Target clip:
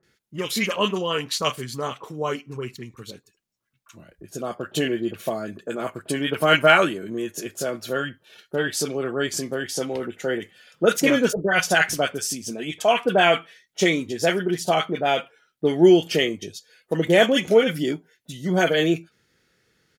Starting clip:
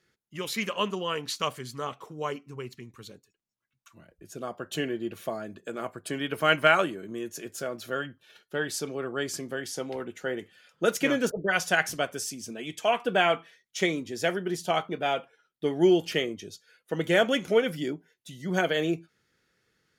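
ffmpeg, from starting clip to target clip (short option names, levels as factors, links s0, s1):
-filter_complex "[0:a]asettb=1/sr,asplit=3[s0][s1][s2];[s0]atrim=end=16.144[s3];[s1]atrim=start=16.14:end=17.49,asetpts=PTS-STARTPTS,afade=t=in:d=0.004:c=qsin,afade=t=out:st=1.346:d=0.004:c=qsin,bandreject=f=1400:w=8.2[s4];[s2]atrim=start=17.486[s5];[s3][s4]acrossfade=d=0.004:c1=hsin:c2=qsin[s6];[s6][s5]acrossfade=d=0.004:c1=qsin:c2=hsin,acrossover=split=1200[s7][s8];[s8]adelay=30[s9];[s7][s9]amix=inputs=2:normalize=0,volume=2.24"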